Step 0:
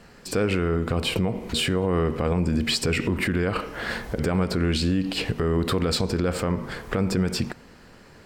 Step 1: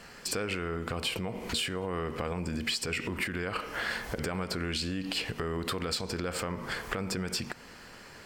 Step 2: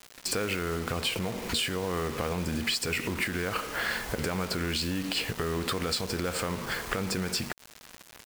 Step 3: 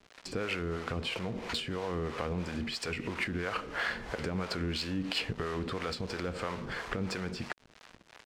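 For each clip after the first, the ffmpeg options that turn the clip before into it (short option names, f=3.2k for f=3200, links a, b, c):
-af "tiltshelf=f=680:g=-5,bandreject=f=3.8k:w=20,acompressor=threshold=-31dB:ratio=4"
-af "acrusher=bits=6:mix=0:aa=0.000001,volume=2.5dB"
-filter_complex "[0:a]acrossover=split=460[a][b];[a]aeval=exprs='val(0)*(1-0.7/2+0.7/2*cos(2*PI*3*n/s))':c=same[c];[b]aeval=exprs='val(0)*(1-0.7/2-0.7/2*cos(2*PI*3*n/s))':c=same[d];[c][d]amix=inputs=2:normalize=0,adynamicsmooth=sensitivity=1.5:basefreq=4.5k"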